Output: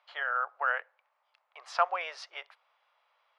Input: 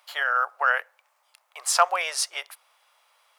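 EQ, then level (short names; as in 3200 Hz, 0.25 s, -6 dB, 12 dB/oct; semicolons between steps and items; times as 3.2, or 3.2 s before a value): LPF 9700 Hz; air absorption 270 m; -5.5 dB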